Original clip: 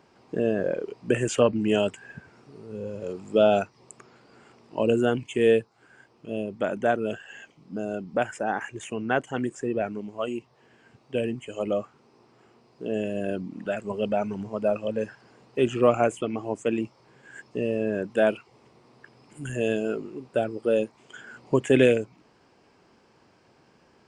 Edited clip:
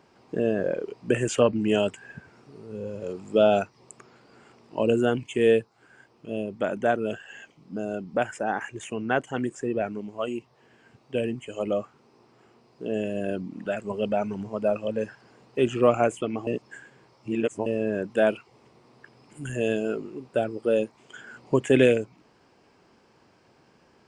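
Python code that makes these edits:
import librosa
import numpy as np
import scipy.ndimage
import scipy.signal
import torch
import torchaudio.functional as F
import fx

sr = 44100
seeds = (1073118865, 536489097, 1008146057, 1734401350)

y = fx.edit(x, sr, fx.reverse_span(start_s=16.47, length_s=1.19), tone=tone)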